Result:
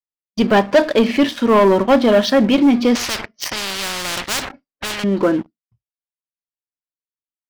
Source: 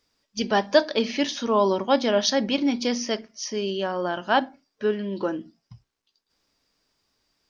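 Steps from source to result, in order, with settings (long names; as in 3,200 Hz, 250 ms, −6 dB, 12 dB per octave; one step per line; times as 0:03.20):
downward expander −34 dBFS
low-pass filter 2,600 Hz 12 dB per octave
low-shelf EQ 210 Hz +4 dB
notch filter 840 Hz, Q 12
leveller curve on the samples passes 3
0:02.95–0:05.04: every bin compressed towards the loudest bin 10 to 1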